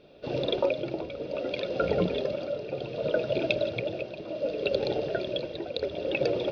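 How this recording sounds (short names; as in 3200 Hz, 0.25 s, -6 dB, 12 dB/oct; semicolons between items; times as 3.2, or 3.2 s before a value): tremolo triangle 0.66 Hz, depth 65%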